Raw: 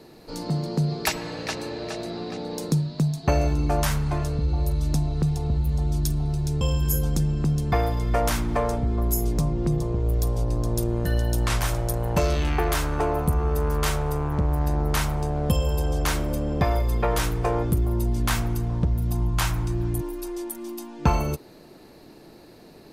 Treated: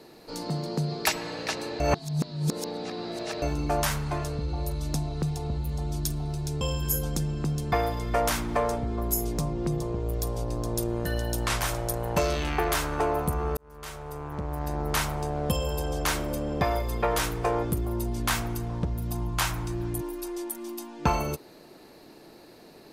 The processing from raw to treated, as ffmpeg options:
-filter_complex "[0:a]asplit=4[a][b][c][d];[a]atrim=end=1.802[e];[b]atrim=start=1.798:end=3.422,asetpts=PTS-STARTPTS,areverse[f];[c]atrim=start=3.418:end=13.57,asetpts=PTS-STARTPTS,afade=t=out:st=10.148:d=0.004:c=hsin[g];[d]atrim=start=13.57,asetpts=PTS-STARTPTS,afade=t=in:d=1.39[h];[e][f]acrossfade=d=0.004:c1=hsin:c2=hsin[i];[g][h]concat=n=2:v=0:a=1[j];[i][j]acrossfade=d=0.004:c1=hsin:c2=hsin,lowshelf=f=210:g=-8.5"

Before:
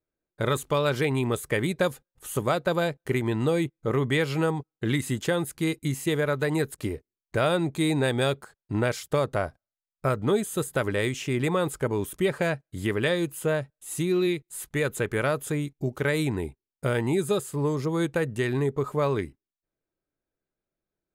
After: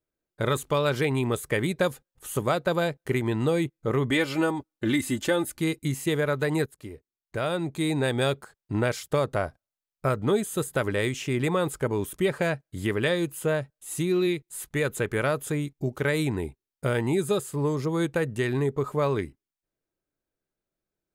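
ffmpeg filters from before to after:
-filter_complex "[0:a]asettb=1/sr,asplit=3[a][b][c];[a]atrim=end=4.104[d];[b]atrim=start=4.1:end=5.61,asetpts=PTS-STARTPTS,afade=t=in:d=0.004:c=qsin,afade=t=out:st=1.506:d=0.004:c=qsin,aecho=1:1:3.4:0.62,atrim=end_sample=66591[e];[c]atrim=start=5.606[f];[d][e]acrossfade=d=0.004:c1=hsin:c2=qsin[g];[g][f]acrossfade=d=0.004:c1=qsin:c2=hsin,asplit=2[h][i];[h]atrim=end=6.66,asetpts=PTS-STARTPTS,afade=t=out:st=6.656:d=0.004:c=hsin:silence=0.211349[j];[i]atrim=start=6.66,asetpts=PTS-STARTPTS,afade=t=in:d=1.61:silence=0.211349[k];[j][k]concat=n=2:v=0:a=1"

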